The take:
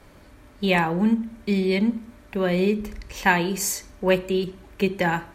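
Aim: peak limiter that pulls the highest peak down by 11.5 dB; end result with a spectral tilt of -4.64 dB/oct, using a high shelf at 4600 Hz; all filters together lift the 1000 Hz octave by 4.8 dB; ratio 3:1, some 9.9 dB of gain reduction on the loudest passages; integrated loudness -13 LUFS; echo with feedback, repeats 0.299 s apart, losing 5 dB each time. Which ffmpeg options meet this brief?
-af "equalizer=f=1k:t=o:g=5.5,highshelf=f=4.6k:g=7,acompressor=threshold=-23dB:ratio=3,alimiter=limit=-21dB:level=0:latency=1,aecho=1:1:299|598|897|1196|1495|1794|2093:0.562|0.315|0.176|0.0988|0.0553|0.031|0.0173,volume=16.5dB"

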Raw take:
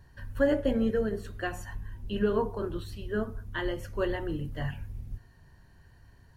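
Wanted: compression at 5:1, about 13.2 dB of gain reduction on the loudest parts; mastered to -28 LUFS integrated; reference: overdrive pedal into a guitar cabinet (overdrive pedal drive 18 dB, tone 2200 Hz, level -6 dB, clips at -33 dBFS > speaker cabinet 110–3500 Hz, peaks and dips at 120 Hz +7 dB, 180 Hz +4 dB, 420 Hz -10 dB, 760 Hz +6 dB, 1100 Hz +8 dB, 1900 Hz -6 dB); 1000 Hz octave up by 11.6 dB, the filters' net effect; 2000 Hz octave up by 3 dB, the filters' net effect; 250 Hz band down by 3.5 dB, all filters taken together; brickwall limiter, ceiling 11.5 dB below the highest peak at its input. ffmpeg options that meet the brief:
-filter_complex "[0:a]equalizer=f=250:t=o:g=-5,equalizer=f=1k:t=o:g=7,equalizer=f=2k:t=o:g=4,acompressor=threshold=-35dB:ratio=5,alimiter=level_in=9.5dB:limit=-24dB:level=0:latency=1,volume=-9.5dB,asplit=2[a][b];[b]highpass=f=720:p=1,volume=18dB,asoftclip=type=tanh:threshold=-33dB[c];[a][c]amix=inputs=2:normalize=0,lowpass=f=2.2k:p=1,volume=-6dB,highpass=110,equalizer=f=120:t=q:w=4:g=7,equalizer=f=180:t=q:w=4:g=4,equalizer=f=420:t=q:w=4:g=-10,equalizer=f=760:t=q:w=4:g=6,equalizer=f=1.1k:t=q:w=4:g=8,equalizer=f=1.9k:t=q:w=4:g=-6,lowpass=f=3.5k:w=0.5412,lowpass=f=3.5k:w=1.3066,volume=13.5dB"

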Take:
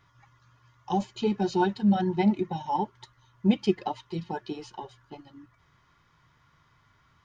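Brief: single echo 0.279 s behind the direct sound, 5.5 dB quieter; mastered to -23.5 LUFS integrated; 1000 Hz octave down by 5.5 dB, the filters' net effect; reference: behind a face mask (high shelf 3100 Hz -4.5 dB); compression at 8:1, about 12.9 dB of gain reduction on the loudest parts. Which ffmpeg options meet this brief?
-af "equalizer=f=1k:t=o:g=-7,acompressor=threshold=-31dB:ratio=8,highshelf=f=3.1k:g=-4.5,aecho=1:1:279:0.531,volume=14dB"

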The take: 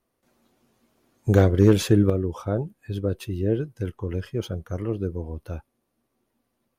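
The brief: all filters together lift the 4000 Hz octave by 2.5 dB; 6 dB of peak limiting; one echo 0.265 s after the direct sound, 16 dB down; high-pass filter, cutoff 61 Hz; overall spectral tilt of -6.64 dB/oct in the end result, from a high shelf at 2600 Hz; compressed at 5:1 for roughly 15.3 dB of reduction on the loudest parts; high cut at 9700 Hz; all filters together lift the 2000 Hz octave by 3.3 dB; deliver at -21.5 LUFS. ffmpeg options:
-af "highpass=61,lowpass=9.7k,equalizer=f=2k:t=o:g=5,highshelf=f=2.6k:g=-3,equalizer=f=4k:t=o:g=4,acompressor=threshold=-29dB:ratio=5,alimiter=limit=-23dB:level=0:latency=1,aecho=1:1:265:0.158,volume=15dB"

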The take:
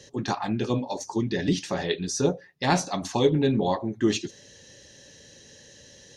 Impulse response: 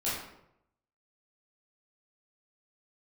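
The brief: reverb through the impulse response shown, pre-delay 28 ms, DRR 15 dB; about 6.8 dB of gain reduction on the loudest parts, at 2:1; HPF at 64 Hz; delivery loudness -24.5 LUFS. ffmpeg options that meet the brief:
-filter_complex "[0:a]highpass=64,acompressor=threshold=-28dB:ratio=2,asplit=2[a][b];[1:a]atrim=start_sample=2205,adelay=28[c];[b][c]afir=irnorm=-1:irlink=0,volume=-22dB[d];[a][d]amix=inputs=2:normalize=0,volume=6dB"

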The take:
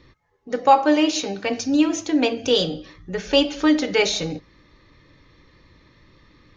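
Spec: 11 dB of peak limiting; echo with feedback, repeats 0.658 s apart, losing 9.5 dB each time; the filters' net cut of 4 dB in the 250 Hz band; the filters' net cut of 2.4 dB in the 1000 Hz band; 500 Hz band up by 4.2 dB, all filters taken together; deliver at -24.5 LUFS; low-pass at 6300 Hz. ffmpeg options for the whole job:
-af "lowpass=6.3k,equalizer=f=250:t=o:g=-8,equalizer=f=500:t=o:g=8,equalizer=f=1k:t=o:g=-6,alimiter=limit=-13.5dB:level=0:latency=1,aecho=1:1:658|1316|1974|2632:0.335|0.111|0.0365|0.012"

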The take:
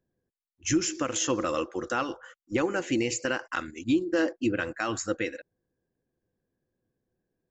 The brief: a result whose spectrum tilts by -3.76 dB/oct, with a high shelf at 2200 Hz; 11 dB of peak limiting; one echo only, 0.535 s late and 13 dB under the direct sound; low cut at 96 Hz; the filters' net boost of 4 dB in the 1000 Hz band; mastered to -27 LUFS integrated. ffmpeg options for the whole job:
-af "highpass=96,equalizer=f=1k:t=o:g=7,highshelf=f=2.2k:g=-6,alimiter=limit=-24dB:level=0:latency=1,aecho=1:1:535:0.224,volume=8dB"

